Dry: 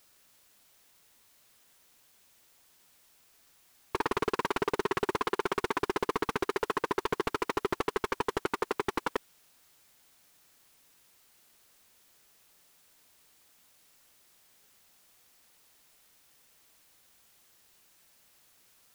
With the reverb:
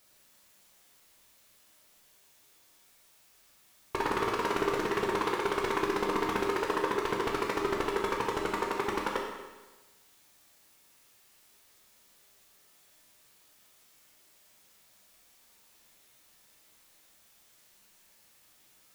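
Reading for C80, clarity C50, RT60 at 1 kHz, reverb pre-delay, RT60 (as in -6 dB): 5.0 dB, 3.0 dB, 1.2 s, 10 ms, 1.2 s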